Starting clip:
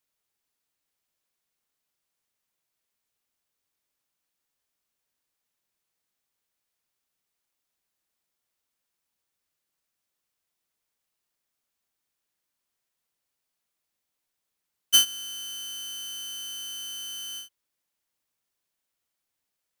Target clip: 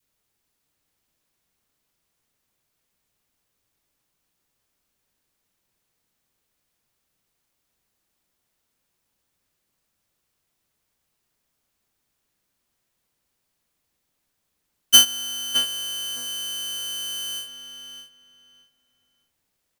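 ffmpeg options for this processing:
-filter_complex "[0:a]lowshelf=f=330:g=8.5,asplit=2[s0][s1];[s1]adelay=614,lowpass=f=3200:p=1,volume=0.501,asplit=2[s2][s3];[s3]adelay=614,lowpass=f=3200:p=1,volume=0.24,asplit=2[s4][s5];[s5]adelay=614,lowpass=f=3200:p=1,volume=0.24[s6];[s0][s2][s4][s6]amix=inputs=4:normalize=0,adynamicequalizer=threshold=0.00282:dfrequency=740:dqfactor=1:tfrequency=740:tqfactor=1:attack=5:release=100:ratio=0.375:range=3:mode=boostabove:tftype=bell,volume=2"

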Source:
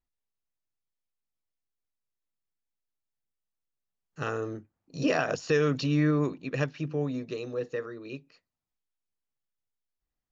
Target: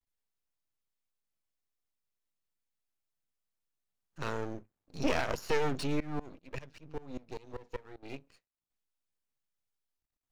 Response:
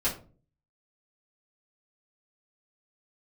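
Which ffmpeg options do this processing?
-filter_complex "[0:a]aeval=exprs='max(val(0),0)':c=same,asettb=1/sr,asplit=3[s0][s1][s2];[s0]atrim=end=6.004[s3];[s1]atrim=start=6:end=8.03,asetpts=PTS-STARTPTS,afade=t=in:d=0.004:c=qsin,afade=t=out:st=2.026:d=0.004:c=qsin,aeval=exprs='val(0)*pow(10,-22*if(lt(mod(-5.1*n/s,1),2*abs(-5.1)/1000),1-mod(-5.1*n/s,1)/(2*abs(-5.1)/1000),(mod(-5.1*n/s,1)-2*abs(-5.1)/1000)/(1-2*abs(-5.1)/1000))/20)':c=same[s4];[s2]atrim=start=8.026[s5];[s3][s4]acrossfade=d=0.004:c1=hsin:c2=qsin[s6];[s6][s5]acrossfade=d=0.004:c1=qsin:c2=hsin"

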